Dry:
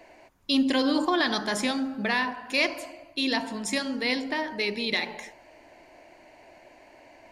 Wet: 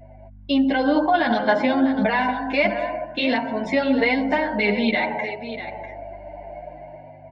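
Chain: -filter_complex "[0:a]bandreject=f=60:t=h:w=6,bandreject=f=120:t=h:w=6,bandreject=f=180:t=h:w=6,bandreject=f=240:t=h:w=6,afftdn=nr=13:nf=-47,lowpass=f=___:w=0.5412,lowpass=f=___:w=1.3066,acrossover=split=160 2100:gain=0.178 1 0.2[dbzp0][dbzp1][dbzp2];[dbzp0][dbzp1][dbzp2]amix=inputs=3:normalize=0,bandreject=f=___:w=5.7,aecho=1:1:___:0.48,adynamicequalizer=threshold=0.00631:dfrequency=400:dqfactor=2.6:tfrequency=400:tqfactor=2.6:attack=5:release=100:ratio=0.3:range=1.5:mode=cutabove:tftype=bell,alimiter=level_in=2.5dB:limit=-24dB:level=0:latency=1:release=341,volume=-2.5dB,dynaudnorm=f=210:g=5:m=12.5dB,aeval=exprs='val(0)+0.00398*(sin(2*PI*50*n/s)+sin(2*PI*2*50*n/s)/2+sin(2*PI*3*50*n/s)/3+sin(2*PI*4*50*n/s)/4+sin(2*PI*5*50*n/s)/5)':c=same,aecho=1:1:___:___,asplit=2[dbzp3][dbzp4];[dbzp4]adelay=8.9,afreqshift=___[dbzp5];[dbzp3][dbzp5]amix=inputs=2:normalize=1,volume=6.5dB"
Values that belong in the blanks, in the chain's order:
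4.1k, 4.1k, 1.3k, 1.4, 647, 0.266, 0.54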